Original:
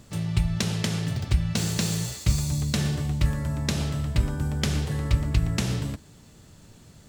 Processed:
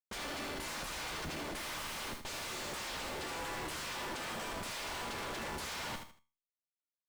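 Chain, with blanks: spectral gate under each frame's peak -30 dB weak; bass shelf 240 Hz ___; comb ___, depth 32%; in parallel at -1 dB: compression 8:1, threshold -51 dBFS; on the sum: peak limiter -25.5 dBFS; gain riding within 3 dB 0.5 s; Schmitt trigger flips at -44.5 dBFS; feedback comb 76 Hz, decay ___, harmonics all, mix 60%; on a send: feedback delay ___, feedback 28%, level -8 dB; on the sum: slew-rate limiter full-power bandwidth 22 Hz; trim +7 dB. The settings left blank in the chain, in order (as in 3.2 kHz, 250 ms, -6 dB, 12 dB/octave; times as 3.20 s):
+9 dB, 3.4 ms, 0.34 s, 78 ms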